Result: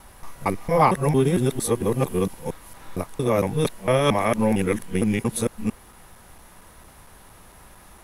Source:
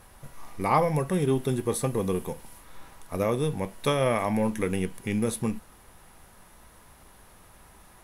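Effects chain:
reversed piece by piece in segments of 228 ms
level +5 dB

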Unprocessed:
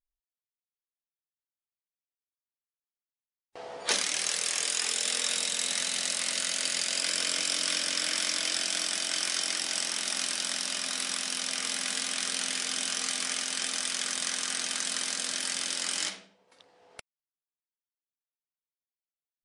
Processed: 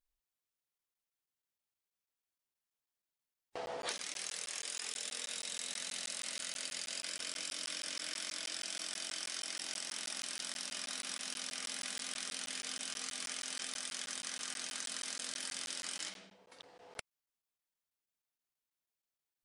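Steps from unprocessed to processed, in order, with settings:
downward compressor 12 to 1, threshold −40 dBFS, peak gain reduction 18.5 dB
regular buffer underruns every 0.16 s, samples 512, zero, from 0:00.78
level +2.5 dB

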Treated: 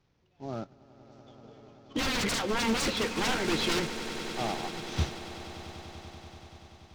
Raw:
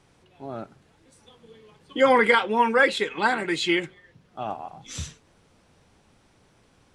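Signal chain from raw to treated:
variable-slope delta modulation 32 kbit/s
wave folding −24 dBFS
low-shelf EQ 280 Hz +7.5 dB
on a send: echo that builds up and dies away 96 ms, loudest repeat 8, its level −15 dB
on the sum: expander for the loud parts 1.5 to 1, over −53 dBFS

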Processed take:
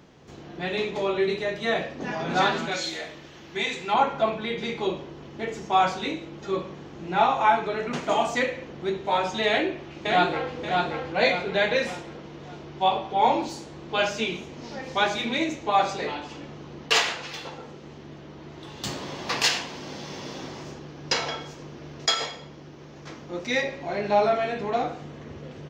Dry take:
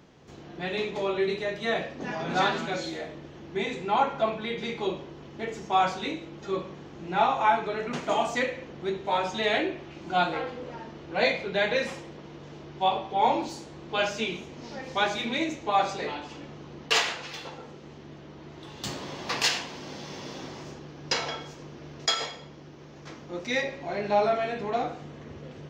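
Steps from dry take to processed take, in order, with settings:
0:02.71–0:03.94: tilt shelving filter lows −6.5 dB, about 1,100 Hz
0:09.47–0:10.54: delay throw 580 ms, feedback 40%, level −3 dB
level +2.5 dB

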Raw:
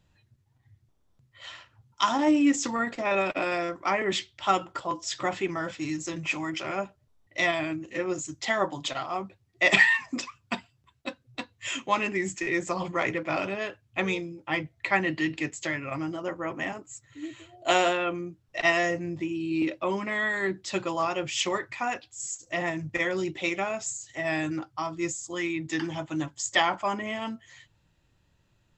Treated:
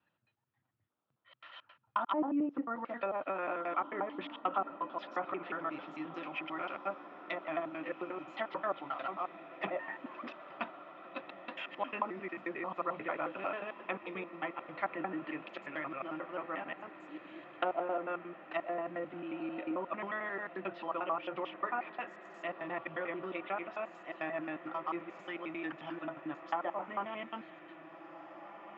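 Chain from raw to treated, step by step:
slices reordered back to front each 89 ms, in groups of 2
treble cut that deepens with the level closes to 760 Hz, closed at −21.5 dBFS
loudspeaker in its box 300–3,100 Hz, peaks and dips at 400 Hz −5 dB, 1,300 Hz +6 dB, 2,000 Hz −5 dB
feedback delay with all-pass diffusion 1,829 ms, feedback 63%, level −13.5 dB
level −6.5 dB

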